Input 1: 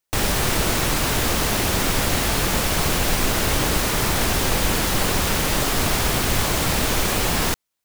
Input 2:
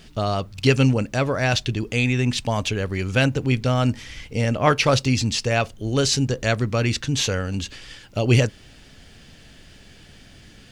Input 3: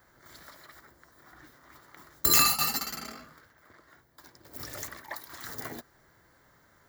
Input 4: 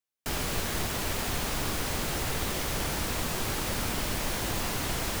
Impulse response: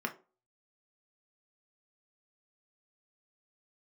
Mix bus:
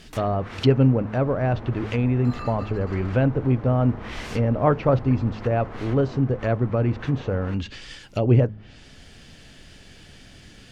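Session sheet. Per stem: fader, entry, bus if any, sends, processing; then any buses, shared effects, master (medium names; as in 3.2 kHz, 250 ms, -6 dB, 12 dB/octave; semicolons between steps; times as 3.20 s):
-16.0 dB, 0.00 s, send -4.5 dB, peak limiter -14 dBFS, peak gain reduction 7.5 dB
+0.5 dB, 0.00 s, no send, de-hum 53.08 Hz, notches 4
+2.5 dB, 0.00 s, no send, high-pass 1.5 kHz
-7.0 dB, 1.00 s, no send, none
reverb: on, RT60 0.35 s, pre-delay 3 ms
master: low-pass that closes with the level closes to 920 Hz, closed at -18.5 dBFS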